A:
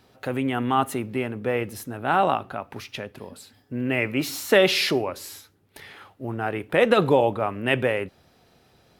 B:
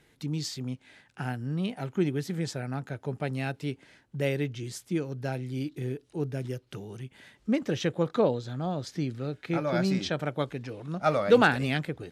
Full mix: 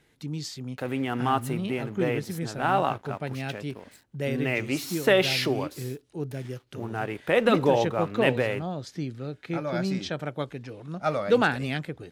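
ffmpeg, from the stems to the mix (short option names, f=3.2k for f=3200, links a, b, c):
-filter_complex "[0:a]aeval=exprs='sgn(val(0))*max(abs(val(0))-0.00501,0)':c=same,adelay=550,volume=-3dB[a];[1:a]volume=-1.5dB[b];[a][b]amix=inputs=2:normalize=0"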